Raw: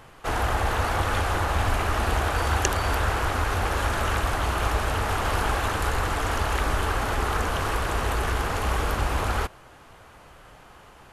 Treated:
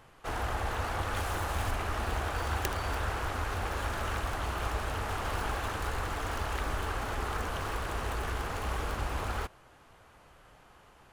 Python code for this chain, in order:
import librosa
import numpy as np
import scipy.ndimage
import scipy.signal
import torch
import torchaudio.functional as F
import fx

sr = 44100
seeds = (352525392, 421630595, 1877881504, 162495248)

y = fx.tracing_dist(x, sr, depth_ms=0.33)
y = fx.high_shelf(y, sr, hz=6600.0, db=8.0, at=(1.16, 1.71))
y = F.gain(torch.from_numpy(y), -8.5).numpy()